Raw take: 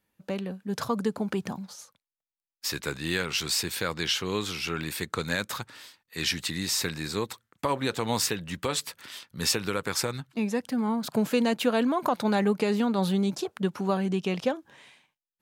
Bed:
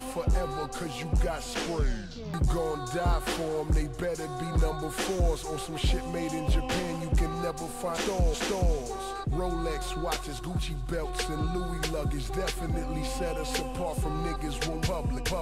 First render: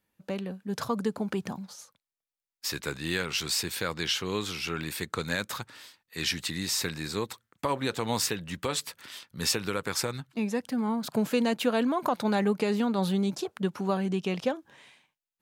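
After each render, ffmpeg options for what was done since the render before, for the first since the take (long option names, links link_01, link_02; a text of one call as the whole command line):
ffmpeg -i in.wav -af "volume=-1.5dB" out.wav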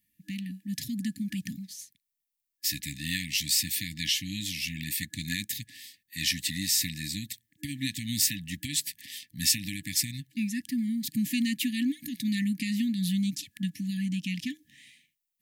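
ffmpeg -i in.wav -af "afftfilt=real='re*(1-between(b*sr/4096,310,1700))':imag='im*(1-between(b*sr/4096,310,1700))':win_size=4096:overlap=0.75,highshelf=frequency=9200:gain=12" out.wav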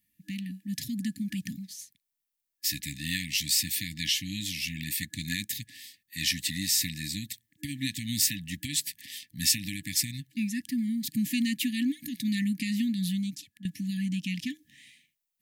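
ffmpeg -i in.wav -filter_complex "[0:a]asplit=2[link_01][link_02];[link_01]atrim=end=13.65,asetpts=PTS-STARTPTS,afade=type=out:start_time=12.95:duration=0.7:silence=0.177828[link_03];[link_02]atrim=start=13.65,asetpts=PTS-STARTPTS,afade=type=in:duration=0.004:curve=hsin:silence=0.177828[link_04];[link_03][link_04]concat=n=2:v=0:a=1" out.wav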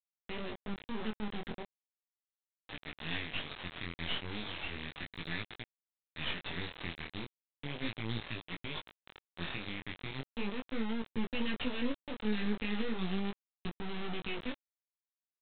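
ffmpeg -i in.wav -af "aresample=8000,acrusher=bits=3:dc=4:mix=0:aa=0.000001,aresample=44100,flanger=delay=17.5:depth=6.3:speed=0.36" out.wav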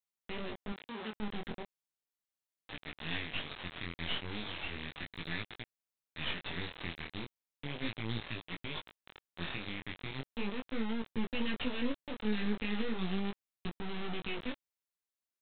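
ffmpeg -i in.wav -filter_complex "[0:a]asettb=1/sr,asplit=3[link_01][link_02][link_03];[link_01]atrim=end=0.724[link_04];[link_02]atrim=start=0.72:end=1.13,asetpts=PTS-STARTPTS,afade=type=in:duration=0.004:curve=qsin,afade=type=out:start_time=0.406:duration=0.004:curve=qsin,highpass=frequency=340:poles=1[link_05];[link_03]atrim=start=1.126[link_06];[link_04][link_05]acrossfade=duration=0.004:curve1=hsin:curve2=qsin[link_07];[link_07][link_06]acrossfade=duration=0.004:curve1=qsin:curve2=hsin" out.wav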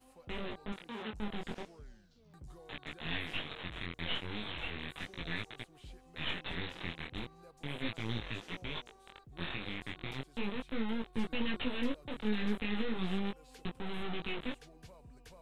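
ffmpeg -i in.wav -i bed.wav -filter_complex "[1:a]volume=-25.5dB[link_01];[0:a][link_01]amix=inputs=2:normalize=0" out.wav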